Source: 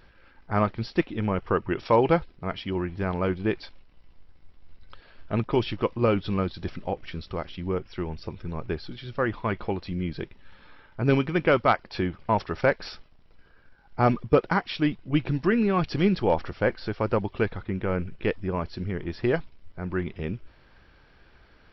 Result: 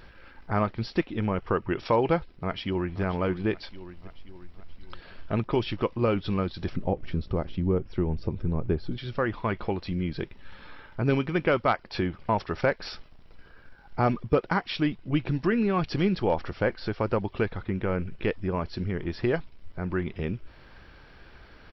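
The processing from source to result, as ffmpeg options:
-filter_complex "[0:a]asplit=2[s0][s1];[s1]afade=t=in:st=2.32:d=0.01,afade=t=out:st=3.01:d=0.01,aecho=0:1:530|1060|1590|2120|2650:0.199526|0.0997631|0.0498816|0.0249408|0.0124704[s2];[s0][s2]amix=inputs=2:normalize=0,asettb=1/sr,asplit=3[s3][s4][s5];[s3]atrim=end=6.734[s6];[s4]atrim=start=6.73:end=8.98,asetpts=PTS-STARTPTS,afade=t=in:d=0.004:c=qsin,afade=t=out:st=2.246:d=0.004:c=qsin,tiltshelf=f=840:g=7.5[s7];[s5]atrim=start=8.976[s8];[s6][s7]acrossfade=d=0.004:c1=hsin:c2=qsin[s9];[s9][s8]acrossfade=d=0.004:c1=qsin:c2=hsin,acompressor=threshold=0.01:ratio=1.5,volume=1.88"

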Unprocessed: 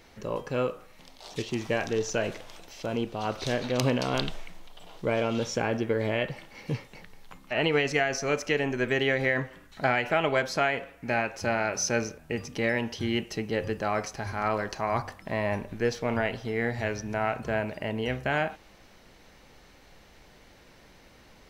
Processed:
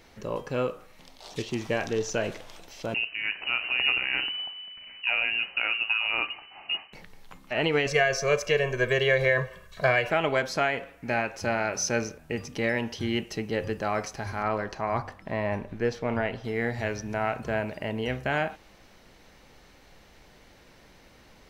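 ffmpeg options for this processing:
-filter_complex "[0:a]asettb=1/sr,asplit=3[s0][s1][s2];[s0]atrim=end=2.944[s3];[s1]atrim=start=2.94:end=6.93,asetpts=PTS-STARTPTS,afade=t=in:d=0.004:c=qsin,afade=t=out:st=3.986:d=0.004:c=qsin,lowpass=f=2600:t=q:w=0.5098,lowpass=f=2600:t=q:w=0.6013,lowpass=f=2600:t=q:w=0.9,lowpass=f=2600:t=q:w=2.563,afreqshift=-3000[s4];[s2]atrim=start=6.926[s5];[s3][s4]acrossfade=d=0.004:c1=hsin:c2=qsin[s6];[s6][s5]acrossfade=d=0.004:c1=qsin:c2=hsin,asettb=1/sr,asplit=3[s7][s8][s9];[s7]atrim=end=7.864[s10];[s8]atrim=start=7.86:end=10.1,asetpts=PTS-STARTPTS,afade=t=in:d=0.004:c=qsin,afade=t=out:st=2.236:d=0.004:c=qsin,aecho=1:1:1.8:0.95,atrim=end_sample=98784[s11];[s9]atrim=start=10.096[s12];[s10][s11]acrossfade=d=0.004:c1=hsin:c2=qsin[s13];[s13][s12]acrossfade=d=0.004:c1=qsin:c2=hsin,asettb=1/sr,asplit=3[s14][s15][s16];[s14]atrim=end=14.424[s17];[s15]atrim=start=14.42:end=16.44,asetpts=PTS-STARTPTS,afade=t=in:d=0.004:c=qsin,afade=t=out:st=2.016:d=0.004:c=qsin,highshelf=f=4500:g=-10[s18];[s16]atrim=start=16.436[s19];[s17][s18]acrossfade=d=0.004:c1=hsin:c2=qsin[s20];[s20][s19]acrossfade=d=0.004:c1=qsin:c2=hsin"

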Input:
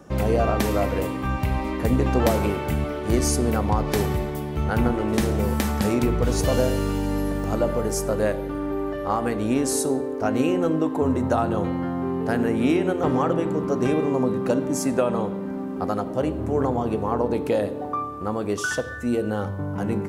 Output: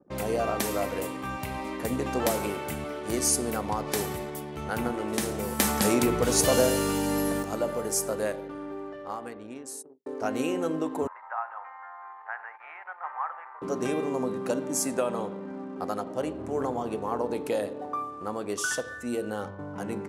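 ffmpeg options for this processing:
-filter_complex "[0:a]asettb=1/sr,asplit=3[s0][s1][s2];[s0]atrim=end=5.594[s3];[s1]atrim=start=5.59:end=7.43,asetpts=PTS-STARTPTS,afade=t=in:d=0.004:c=qsin,afade=t=out:st=1.836:d=0.004:c=qsin,acontrast=57[s4];[s2]atrim=start=7.426[s5];[s3][s4]acrossfade=d=0.004:c1=hsin:c2=qsin[s6];[s6][s5]acrossfade=d=0.004:c1=qsin:c2=hsin,asettb=1/sr,asplit=3[s7][s8][s9];[s7]atrim=end=11.074[s10];[s8]atrim=start=11.07:end=13.62,asetpts=PTS-STARTPTS,afade=t=in:d=0.004:c=qsin,afade=t=out:st=2.546:d=0.004:c=qsin,asuperpass=centerf=1300:order=8:qfactor=0.98[s11];[s9]atrim=start=13.616[s12];[s10][s11]acrossfade=d=0.004:c1=hsin:c2=qsin[s13];[s13][s12]acrossfade=d=0.004:c1=qsin:c2=hsin,asplit=2[s14][s15];[s14]atrim=end=10.06,asetpts=PTS-STARTPTS,afade=t=out:st=8.09:d=1.97[s16];[s15]atrim=start=10.06,asetpts=PTS-STARTPTS,afade=t=in:d=0.004:c=hsin[s17];[s16][s17]concat=n=2:v=0:a=1,anlmdn=0.158,highpass=f=300:p=1,equalizer=f=9900:t=o:w=1.5:g=8.5,volume=0.596"

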